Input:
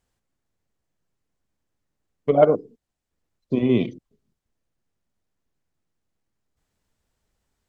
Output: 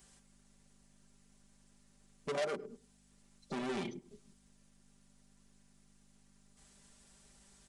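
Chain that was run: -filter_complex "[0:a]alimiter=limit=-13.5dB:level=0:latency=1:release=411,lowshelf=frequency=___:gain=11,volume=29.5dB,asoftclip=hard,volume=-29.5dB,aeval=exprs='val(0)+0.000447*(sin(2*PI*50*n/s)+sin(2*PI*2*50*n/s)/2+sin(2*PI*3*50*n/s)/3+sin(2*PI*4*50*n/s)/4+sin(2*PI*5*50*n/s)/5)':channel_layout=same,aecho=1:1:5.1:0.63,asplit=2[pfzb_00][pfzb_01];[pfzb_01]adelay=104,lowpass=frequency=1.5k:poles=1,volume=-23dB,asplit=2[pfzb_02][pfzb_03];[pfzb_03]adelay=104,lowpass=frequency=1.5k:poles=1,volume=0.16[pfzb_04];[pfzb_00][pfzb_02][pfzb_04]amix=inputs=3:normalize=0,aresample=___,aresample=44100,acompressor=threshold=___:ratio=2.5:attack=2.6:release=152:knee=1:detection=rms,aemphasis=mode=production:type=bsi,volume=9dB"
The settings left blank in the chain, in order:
78, 22050, -48dB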